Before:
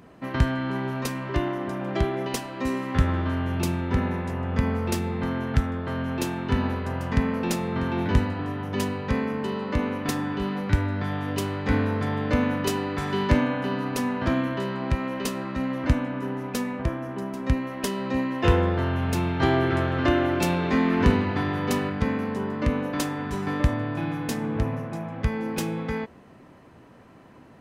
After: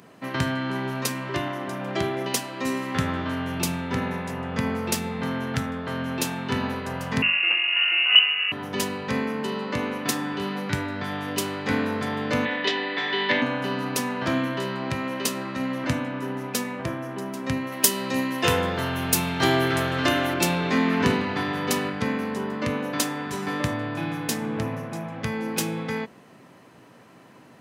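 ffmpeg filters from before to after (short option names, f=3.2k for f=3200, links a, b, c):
-filter_complex "[0:a]asettb=1/sr,asplit=3[a][b][c];[a]atrim=end=7.224[d];[b]atrim=start=7.22:end=8.52,asetpts=PTS-STARTPTS,afade=t=in:d=0.004:c=qsin,afade=t=out:st=1.296:d=0.004:c=qsin,lowpass=f=2.6k:t=q:w=0.5098,lowpass=f=2.6k:t=q:w=0.6013,lowpass=f=2.6k:t=q:w=0.9,lowpass=f=2.6k:t=q:w=2.563,afreqshift=-3000[e];[c]atrim=start=8.516[f];[d][e]acrossfade=d=0.004:c1=hsin:c2=qsin[g];[g][f]acrossfade=d=0.004:c1=qsin:c2=hsin,asettb=1/sr,asplit=3[h][i][j];[h]atrim=end=12.454[k];[i]atrim=start=12.45:end=13.42,asetpts=PTS-STARTPTS,afade=t=in:d=0.004:c=qsin,afade=t=out:st=0.966:d=0.004:c=qsin,highpass=300,equalizer=f=1.3k:t=q:w=4:g=-6,equalizer=f=1.9k:t=q:w=4:g=10,equalizer=f=3.5k:t=q:w=4:g=9,lowpass=f=4.3k:w=0.5412,lowpass=f=4.3k:w=1.3066[l];[j]atrim=start=13.416[m];[k][l]acrossfade=d=0.004:c1=hsin:c2=qsin[n];[n][m]acrossfade=d=0.004:c1=qsin:c2=hsin,asettb=1/sr,asplit=3[o][p][q];[o]atrim=end=17.724[r];[p]atrim=start=17.72:end=20.34,asetpts=PTS-STARTPTS,afade=t=in:d=0.004:c=qsin,afade=t=out:st=2.616:d=0.004:c=qsin,aemphasis=mode=production:type=50kf[s];[q]atrim=start=20.336[t];[r][s]acrossfade=d=0.004:c1=hsin:c2=qsin[u];[u][t]acrossfade=d=0.004:c1=qsin:c2=hsin,highpass=f=110:w=0.5412,highpass=f=110:w=1.3066,highshelf=f=2.6k:g=8.5,bandreject=f=50:t=h:w=6,bandreject=f=100:t=h:w=6,bandreject=f=150:t=h:w=6,bandreject=f=200:t=h:w=6,bandreject=f=250:t=h:w=6,bandreject=f=300:t=h:w=6,bandreject=f=350:t=h:w=6"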